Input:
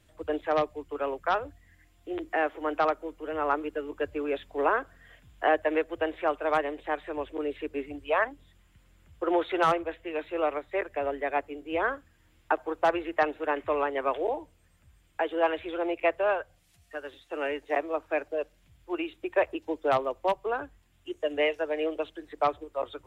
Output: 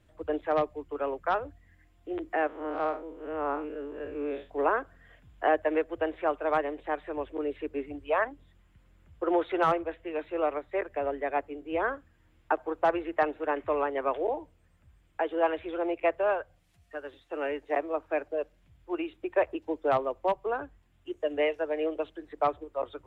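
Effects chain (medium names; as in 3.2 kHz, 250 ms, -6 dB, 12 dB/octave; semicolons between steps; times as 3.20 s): 2.47–4.50 s: spectral blur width 116 ms; treble shelf 2.8 kHz -10.5 dB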